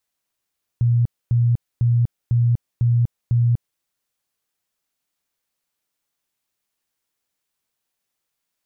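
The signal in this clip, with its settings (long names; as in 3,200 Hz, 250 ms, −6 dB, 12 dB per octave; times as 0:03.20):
tone bursts 119 Hz, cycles 29, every 0.50 s, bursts 6, −13.5 dBFS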